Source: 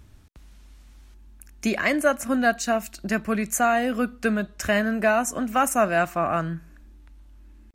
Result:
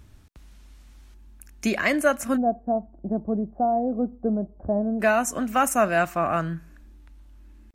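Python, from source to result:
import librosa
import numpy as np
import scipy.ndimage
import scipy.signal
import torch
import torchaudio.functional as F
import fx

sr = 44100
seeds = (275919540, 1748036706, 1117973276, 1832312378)

y = fx.ellip_lowpass(x, sr, hz=820.0, order=4, stop_db=80, at=(2.36, 4.99), fade=0.02)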